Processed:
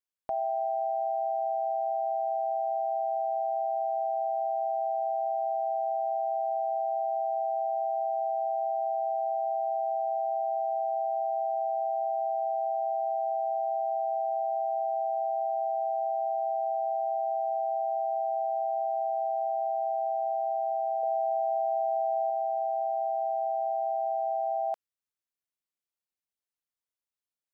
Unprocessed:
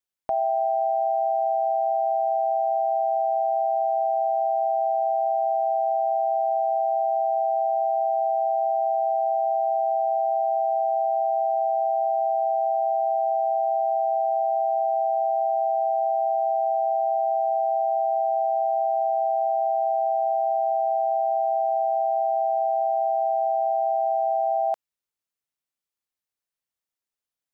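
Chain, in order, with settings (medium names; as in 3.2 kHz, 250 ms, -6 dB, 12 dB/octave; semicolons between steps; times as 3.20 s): 21.03–22.30 s: peaking EQ 510 Hz +12.5 dB 0.3 oct; trim -6.5 dB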